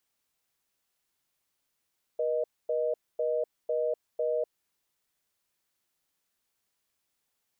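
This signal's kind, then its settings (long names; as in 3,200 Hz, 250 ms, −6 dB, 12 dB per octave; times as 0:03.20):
call progress tone reorder tone, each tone −28.5 dBFS 2.48 s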